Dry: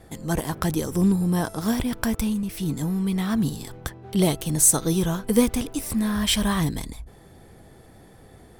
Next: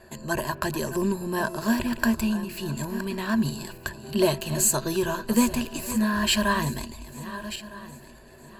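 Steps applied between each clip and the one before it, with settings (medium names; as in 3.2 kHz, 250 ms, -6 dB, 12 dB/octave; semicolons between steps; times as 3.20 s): backward echo that repeats 630 ms, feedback 51%, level -13 dB; overdrive pedal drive 8 dB, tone 4.1 kHz, clips at -5 dBFS; rippled EQ curve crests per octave 1.4, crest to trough 14 dB; trim -2.5 dB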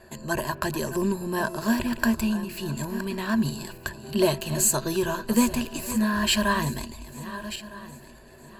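no audible change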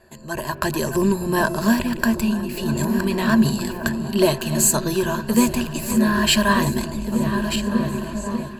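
delay with an opening low-pass 594 ms, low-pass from 200 Hz, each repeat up 1 oct, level -6 dB; level rider gain up to 12.5 dB; trim -3 dB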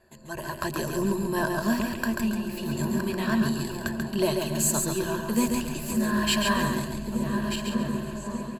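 feedback delay 138 ms, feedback 32%, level -4.5 dB; trim -8 dB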